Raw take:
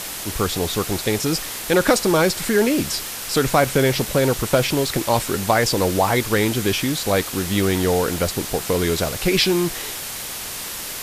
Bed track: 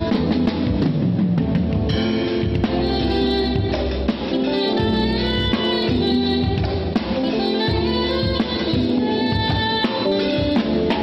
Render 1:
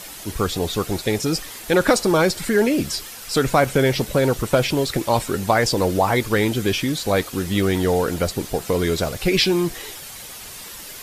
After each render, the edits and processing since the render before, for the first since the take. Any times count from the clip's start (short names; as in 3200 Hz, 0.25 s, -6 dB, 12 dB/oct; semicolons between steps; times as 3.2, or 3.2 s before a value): denoiser 9 dB, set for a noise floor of -31 dBFS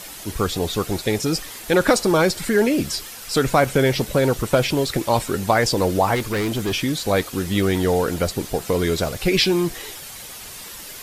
6.15–6.73 hard clip -19 dBFS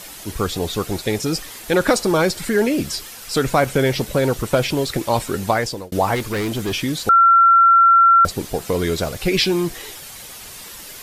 5.49–5.92 fade out; 7.09–8.25 bleep 1360 Hz -8 dBFS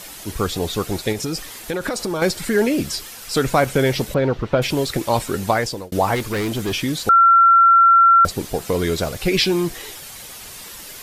1.12–2.22 compressor, threshold -20 dBFS; 4.14–4.62 air absorption 250 m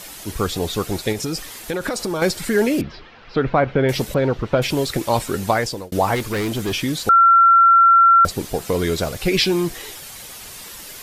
2.81–3.89 Gaussian blur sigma 2.9 samples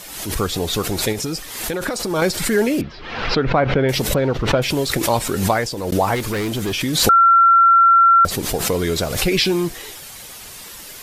backwards sustainer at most 54 dB/s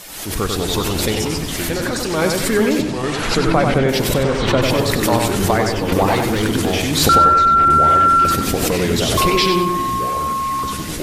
echoes that change speed 0.24 s, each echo -4 st, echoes 3, each echo -6 dB; darkening echo 95 ms, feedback 45%, low-pass 4200 Hz, level -4 dB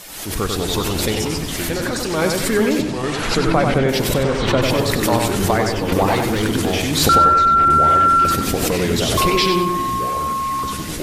gain -1 dB